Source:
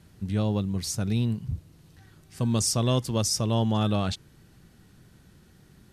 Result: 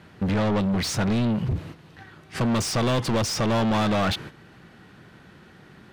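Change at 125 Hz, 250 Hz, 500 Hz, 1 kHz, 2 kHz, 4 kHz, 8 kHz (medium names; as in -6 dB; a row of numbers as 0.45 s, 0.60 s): 0.0 dB, +4.0 dB, +5.0 dB, +7.0 dB, +12.0 dB, +2.5 dB, -2.5 dB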